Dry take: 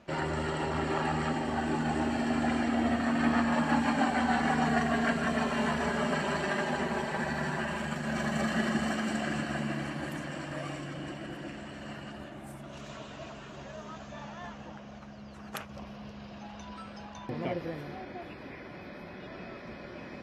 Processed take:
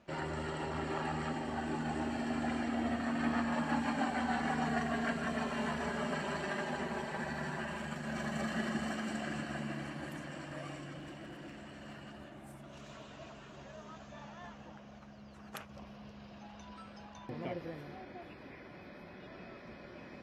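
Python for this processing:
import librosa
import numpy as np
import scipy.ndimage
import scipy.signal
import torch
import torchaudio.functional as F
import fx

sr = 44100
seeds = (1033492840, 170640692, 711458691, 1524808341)

y = fx.clip_hard(x, sr, threshold_db=-36.5, at=(10.99, 13.09))
y = F.gain(torch.from_numpy(y), -6.5).numpy()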